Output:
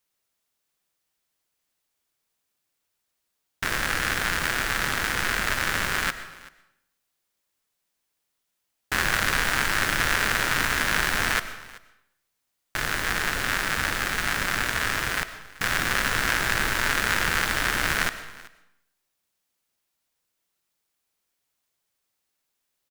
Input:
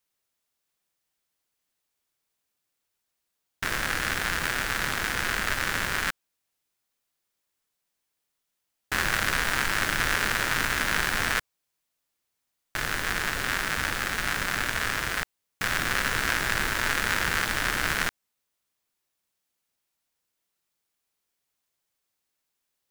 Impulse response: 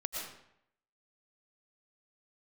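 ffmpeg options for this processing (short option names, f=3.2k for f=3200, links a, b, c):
-filter_complex "[0:a]aecho=1:1:383:0.0891,asplit=2[a][b];[1:a]atrim=start_sample=2205[c];[b][c]afir=irnorm=-1:irlink=0,volume=-10.5dB[d];[a][d]amix=inputs=2:normalize=0"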